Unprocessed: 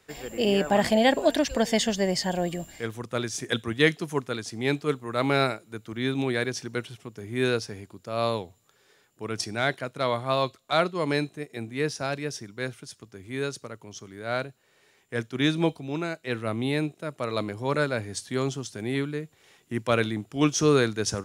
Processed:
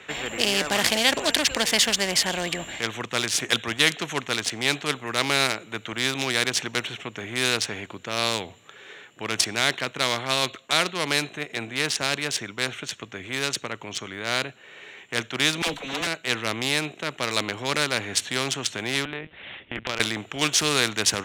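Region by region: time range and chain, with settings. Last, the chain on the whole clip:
15.62–16.07 minimum comb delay 4 ms + high shelf 3200 Hz +8 dB + dispersion lows, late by 54 ms, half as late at 440 Hz
19.05–20 LPC vocoder at 8 kHz pitch kept + compressor 2.5:1, threshold -35 dBFS
whole clip: Wiener smoothing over 9 samples; weighting filter D; spectral compressor 2:1; gain -1 dB

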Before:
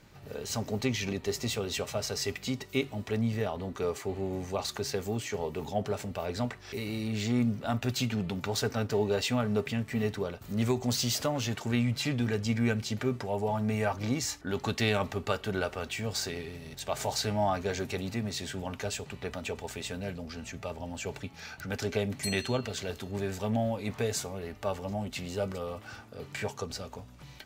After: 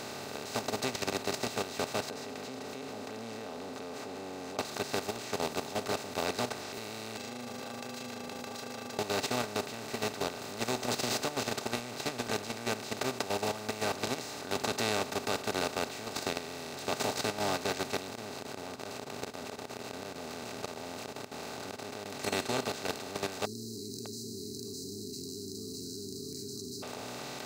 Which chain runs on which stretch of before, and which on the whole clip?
2.1–4.59 double band-pass 340 Hz, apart 0.72 oct + comb 3.8 ms, depth 50%
7.17–8.99 AM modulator 26 Hz, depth 75% + metallic resonator 240 Hz, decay 0.44 s, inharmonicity 0.03 + backwards sustainer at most 32 dB/s
18.07–22.06 median filter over 25 samples + flipped gate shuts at -28 dBFS, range -38 dB + mismatched tape noise reduction decoder only
23.45–26.83 brick-wall FIR band-stop 410–3900 Hz + echo 0.608 s -4.5 dB
whole clip: per-bin compression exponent 0.2; low shelf 190 Hz -8.5 dB; level quantiser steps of 11 dB; gain -8.5 dB

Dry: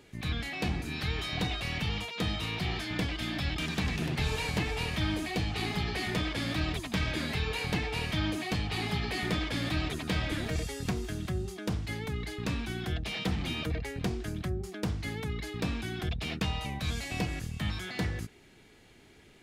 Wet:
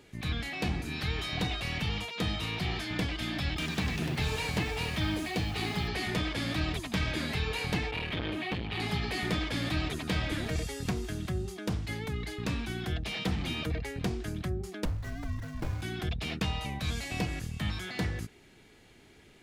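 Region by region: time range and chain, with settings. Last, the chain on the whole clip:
3.57–5.88 HPF 47 Hz + requantised 10-bit, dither triangular
7.91–8.8 resonant high shelf 4400 Hz -10.5 dB, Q 1.5 + core saturation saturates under 470 Hz
14.85–15.82 median filter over 15 samples + frequency shift -160 Hz
whole clip: dry

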